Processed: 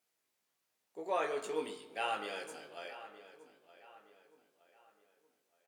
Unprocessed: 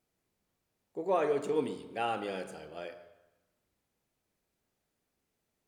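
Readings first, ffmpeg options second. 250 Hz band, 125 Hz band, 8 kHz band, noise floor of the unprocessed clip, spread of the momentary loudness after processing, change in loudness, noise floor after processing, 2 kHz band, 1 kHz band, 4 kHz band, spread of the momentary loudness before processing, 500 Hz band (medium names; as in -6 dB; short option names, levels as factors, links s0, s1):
-9.5 dB, -15.5 dB, +2.5 dB, -83 dBFS, 21 LU, -5.0 dB, -83 dBFS, +1.0 dB, -3.0 dB, +2.0 dB, 15 LU, -6.5 dB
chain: -filter_complex "[0:a]highpass=f=1200:p=1,asplit=2[s0][s1];[s1]adelay=19,volume=0.596[s2];[s0][s2]amix=inputs=2:normalize=0,asplit=2[s3][s4];[s4]adelay=918,lowpass=f=3900:p=1,volume=0.178,asplit=2[s5][s6];[s6]adelay=918,lowpass=f=3900:p=1,volume=0.41,asplit=2[s7][s8];[s8]adelay=918,lowpass=f=3900:p=1,volume=0.41,asplit=2[s9][s10];[s10]adelay=918,lowpass=f=3900:p=1,volume=0.41[s11];[s5][s7][s9][s11]amix=inputs=4:normalize=0[s12];[s3][s12]amix=inputs=2:normalize=0,volume=1.12"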